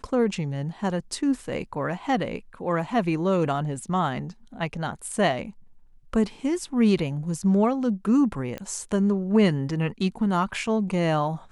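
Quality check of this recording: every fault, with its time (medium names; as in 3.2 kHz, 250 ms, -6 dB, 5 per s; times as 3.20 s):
8.58 s: pop -20 dBFS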